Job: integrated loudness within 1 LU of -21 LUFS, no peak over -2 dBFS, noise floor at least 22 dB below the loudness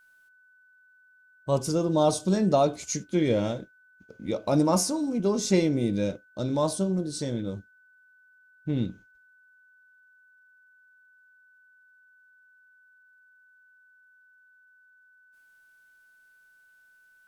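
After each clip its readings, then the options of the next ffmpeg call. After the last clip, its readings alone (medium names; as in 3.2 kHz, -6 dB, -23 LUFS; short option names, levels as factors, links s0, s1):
steady tone 1.5 kHz; tone level -57 dBFS; loudness -26.5 LUFS; peak level -10.5 dBFS; loudness target -21.0 LUFS
-> -af "bandreject=f=1500:w=30"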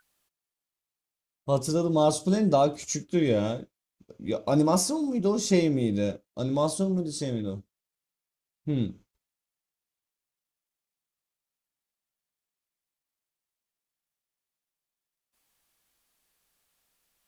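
steady tone not found; loudness -26.5 LUFS; peak level -10.5 dBFS; loudness target -21.0 LUFS
-> -af "volume=1.88"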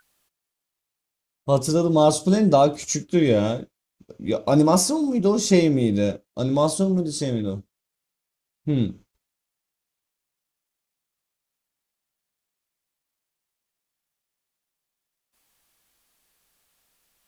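loudness -21.0 LUFS; peak level -5.0 dBFS; noise floor -84 dBFS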